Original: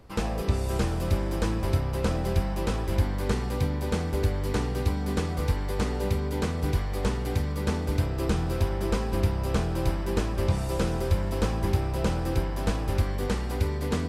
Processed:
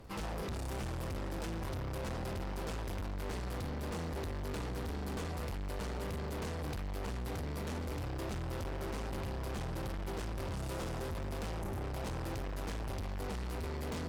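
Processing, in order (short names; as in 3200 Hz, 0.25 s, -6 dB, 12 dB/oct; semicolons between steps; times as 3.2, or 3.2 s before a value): spectral gain 11.62–11.83, 940–5700 Hz -8 dB; tube stage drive 38 dB, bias 0.4; crackle 140/s -55 dBFS; gain +1 dB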